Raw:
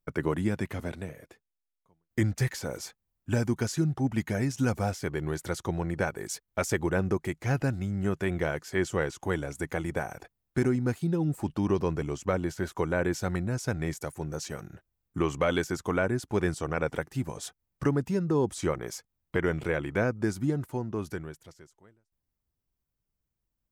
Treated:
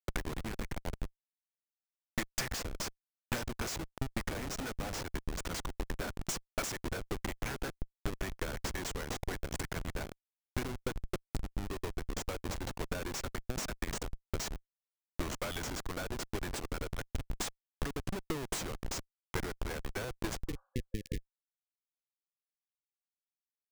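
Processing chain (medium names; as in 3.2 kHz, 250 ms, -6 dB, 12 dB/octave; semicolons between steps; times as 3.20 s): frequency weighting ITU-R 468; Schmitt trigger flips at -30.5 dBFS; transient shaper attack +9 dB, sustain -4 dB; spectral replace 20.51–21.34 s, 520–1700 Hz both; trim -4.5 dB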